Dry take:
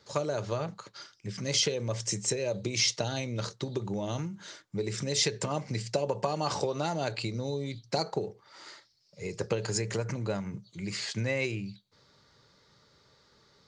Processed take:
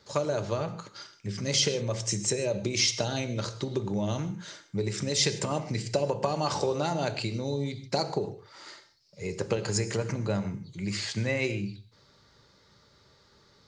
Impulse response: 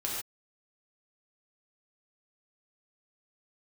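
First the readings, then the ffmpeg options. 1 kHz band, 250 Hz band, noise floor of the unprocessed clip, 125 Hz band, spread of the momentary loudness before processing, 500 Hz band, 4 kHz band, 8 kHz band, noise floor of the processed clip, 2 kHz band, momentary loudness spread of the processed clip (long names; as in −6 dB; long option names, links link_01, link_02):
+2.0 dB, +3.5 dB, −65 dBFS, +2.5 dB, 14 LU, +2.0 dB, +2.0 dB, +1.5 dB, −62 dBFS, +1.5 dB, 13 LU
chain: -filter_complex "[0:a]asplit=2[link_01][link_02];[1:a]atrim=start_sample=2205,lowshelf=frequency=250:gain=10[link_03];[link_02][link_03]afir=irnorm=-1:irlink=0,volume=-13.5dB[link_04];[link_01][link_04]amix=inputs=2:normalize=0"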